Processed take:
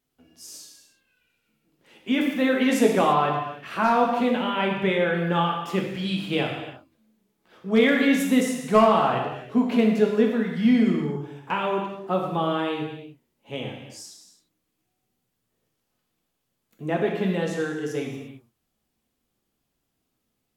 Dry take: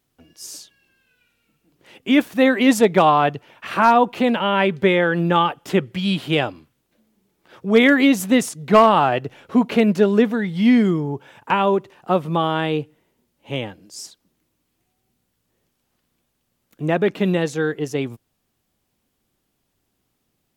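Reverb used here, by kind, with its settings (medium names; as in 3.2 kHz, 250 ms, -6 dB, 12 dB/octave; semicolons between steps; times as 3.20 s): gated-style reverb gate 370 ms falling, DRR -0.5 dB; trim -8.5 dB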